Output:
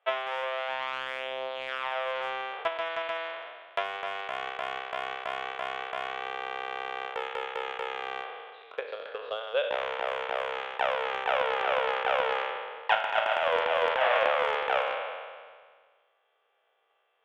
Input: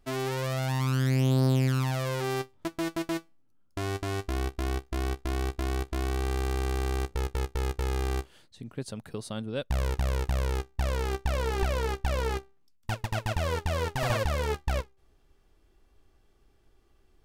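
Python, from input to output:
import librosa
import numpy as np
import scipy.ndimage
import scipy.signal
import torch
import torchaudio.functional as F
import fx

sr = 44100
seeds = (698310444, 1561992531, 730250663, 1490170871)

y = fx.spec_trails(x, sr, decay_s=1.71)
y = scipy.signal.sosfilt(scipy.signal.cheby1(5, 1.0, [470.0, 3400.0], 'bandpass', fs=sr, output='sos'), y)
y = fx.transient(y, sr, attack_db=12, sustain_db=8)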